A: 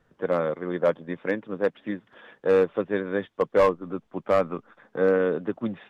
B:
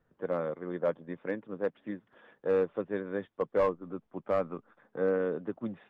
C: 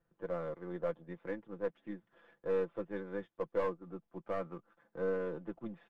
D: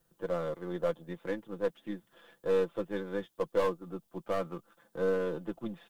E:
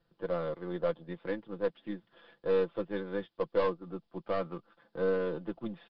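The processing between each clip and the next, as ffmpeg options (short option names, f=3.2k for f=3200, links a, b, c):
-af "highshelf=f=2.6k:g=-9.5,volume=-7dB"
-af "aeval=exprs='if(lt(val(0),0),0.708*val(0),val(0))':c=same,aecho=1:1:5.9:0.62,volume=-6.5dB"
-af "aexciter=amount=1.3:drive=10:freq=3k,volume=5dB"
-af "aresample=11025,aresample=44100"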